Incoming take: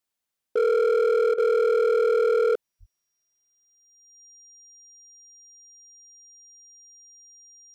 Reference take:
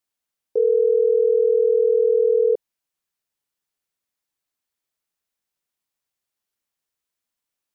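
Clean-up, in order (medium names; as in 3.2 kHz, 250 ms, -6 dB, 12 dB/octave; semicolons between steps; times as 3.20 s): clip repair -18 dBFS; band-stop 5.7 kHz, Q 30; de-plosive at 2.79 s; interpolate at 1.34 s, 40 ms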